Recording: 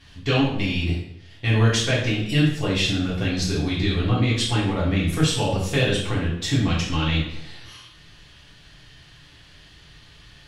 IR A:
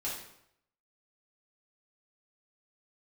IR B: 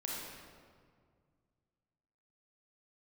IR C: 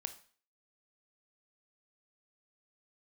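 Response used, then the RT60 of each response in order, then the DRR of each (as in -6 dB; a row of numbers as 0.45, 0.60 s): A; 0.75, 2.0, 0.45 s; -8.0, -4.0, 9.0 dB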